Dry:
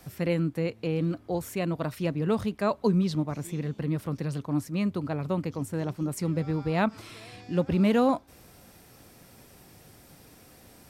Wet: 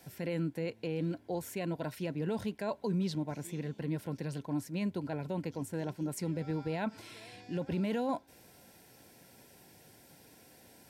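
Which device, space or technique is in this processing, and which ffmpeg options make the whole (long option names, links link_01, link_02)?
PA system with an anti-feedback notch: -af "highpass=frequency=170:poles=1,asuperstop=centerf=1200:order=12:qfactor=5,alimiter=limit=-21.5dB:level=0:latency=1:release=11,volume=-4dB"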